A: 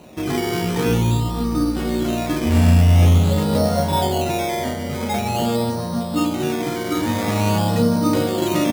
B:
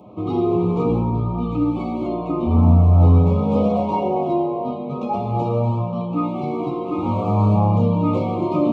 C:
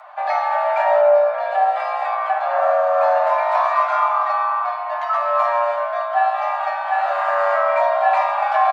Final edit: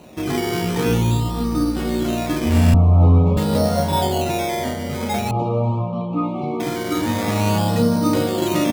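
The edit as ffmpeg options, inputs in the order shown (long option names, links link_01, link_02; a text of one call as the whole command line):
ffmpeg -i take0.wav -i take1.wav -filter_complex "[1:a]asplit=2[link_01][link_02];[0:a]asplit=3[link_03][link_04][link_05];[link_03]atrim=end=2.742[link_06];[link_01]atrim=start=2.738:end=3.372[link_07];[link_04]atrim=start=3.368:end=5.312[link_08];[link_02]atrim=start=5.308:end=6.602[link_09];[link_05]atrim=start=6.598[link_10];[link_06][link_07]acrossfade=duration=0.004:curve1=hsin:curve2=hsin[link_11];[link_11][link_08]acrossfade=duration=0.004:curve1=hsin:curve2=hsin[link_12];[link_12][link_09]acrossfade=duration=0.004:curve1=hsin:curve2=hsin[link_13];[link_13][link_10]acrossfade=duration=0.004:curve1=hsin:curve2=hsin" out.wav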